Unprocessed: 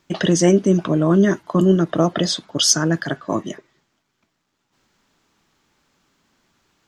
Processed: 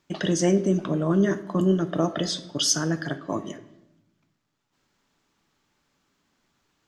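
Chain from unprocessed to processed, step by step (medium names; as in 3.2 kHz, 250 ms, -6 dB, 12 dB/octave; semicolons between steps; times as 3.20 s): simulated room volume 280 m³, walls mixed, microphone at 0.34 m; trim -7 dB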